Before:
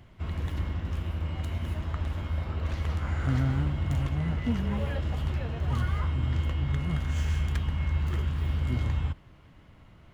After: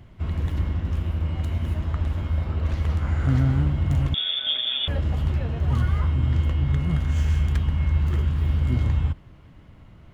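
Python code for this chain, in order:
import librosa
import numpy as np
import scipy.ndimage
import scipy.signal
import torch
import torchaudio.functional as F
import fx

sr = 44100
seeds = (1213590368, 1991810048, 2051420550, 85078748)

y = fx.freq_invert(x, sr, carrier_hz=3500, at=(4.14, 4.88))
y = fx.low_shelf(y, sr, hz=460.0, db=5.5)
y = y * 10.0 ** (1.0 / 20.0)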